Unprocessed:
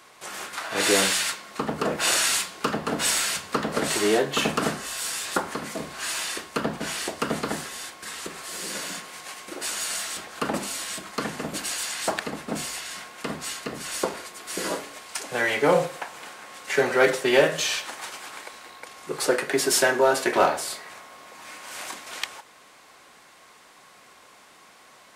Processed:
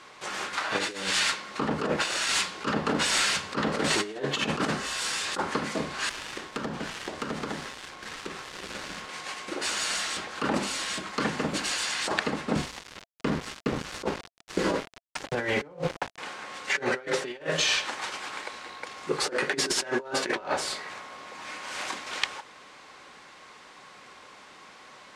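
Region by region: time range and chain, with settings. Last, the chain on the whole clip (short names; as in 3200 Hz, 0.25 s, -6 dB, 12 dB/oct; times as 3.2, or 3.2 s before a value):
6.09–9.09 switching dead time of 0.12 ms + compressor 3:1, threshold -33 dBFS
12.56–16.18 tilt -2.5 dB/oct + sample gate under -32.5 dBFS
whole clip: LPF 5900 Hz 12 dB/oct; notch 680 Hz, Q 12; negative-ratio compressor -27 dBFS, ratio -0.5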